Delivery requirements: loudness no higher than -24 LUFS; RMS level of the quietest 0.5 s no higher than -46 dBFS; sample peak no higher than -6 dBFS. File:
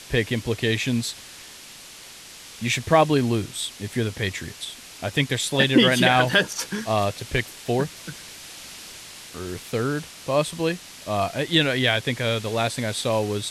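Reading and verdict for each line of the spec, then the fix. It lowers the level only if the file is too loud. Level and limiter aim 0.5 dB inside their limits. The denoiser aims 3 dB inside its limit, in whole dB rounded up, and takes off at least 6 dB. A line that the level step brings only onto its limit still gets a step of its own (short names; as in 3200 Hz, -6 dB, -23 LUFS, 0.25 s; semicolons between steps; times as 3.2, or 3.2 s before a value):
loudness -23.0 LUFS: fail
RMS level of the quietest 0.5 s -43 dBFS: fail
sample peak -5.5 dBFS: fail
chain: denoiser 6 dB, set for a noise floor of -43 dBFS; gain -1.5 dB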